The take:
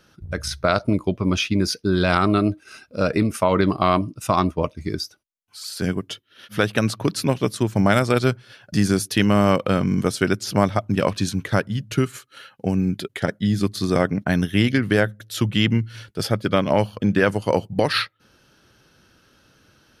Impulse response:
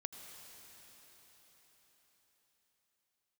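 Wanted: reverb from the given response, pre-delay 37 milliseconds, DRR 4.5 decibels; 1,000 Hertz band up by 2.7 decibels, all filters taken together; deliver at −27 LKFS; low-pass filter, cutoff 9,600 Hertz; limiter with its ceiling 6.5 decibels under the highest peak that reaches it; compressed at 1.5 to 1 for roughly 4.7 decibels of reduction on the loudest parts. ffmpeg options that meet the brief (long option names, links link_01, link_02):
-filter_complex "[0:a]lowpass=9600,equalizer=frequency=1000:width_type=o:gain=3.5,acompressor=threshold=-25dB:ratio=1.5,alimiter=limit=-13dB:level=0:latency=1,asplit=2[link_01][link_02];[1:a]atrim=start_sample=2205,adelay=37[link_03];[link_02][link_03]afir=irnorm=-1:irlink=0,volume=-2dB[link_04];[link_01][link_04]amix=inputs=2:normalize=0,volume=-1.5dB"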